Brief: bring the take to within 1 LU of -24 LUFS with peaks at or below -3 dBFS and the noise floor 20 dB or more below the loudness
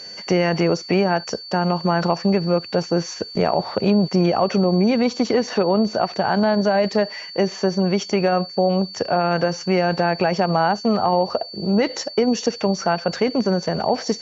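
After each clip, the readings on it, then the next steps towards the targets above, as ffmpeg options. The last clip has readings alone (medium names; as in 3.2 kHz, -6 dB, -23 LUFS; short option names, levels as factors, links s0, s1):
steady tone 4.5 kHz; tone level -34 dBFS; loudness -20.5 LUFS; peak level -6.0 dBFS; loudness target -24.0 LUFS
-> -af "bandreject=f=4500:w=30"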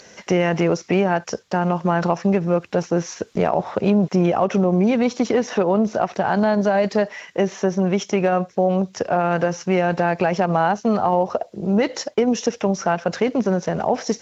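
steady tone not found; loudness -20.5 LUFS; peak level -6.5 dBFS; loudness target -24.0 LUFS
-> -af "volume=0.668"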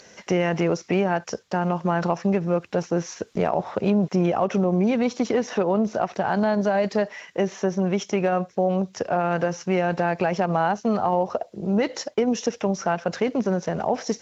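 loudness -24.0 LUFS; peak level -10.0 dBFS; noise floor -54 dBFS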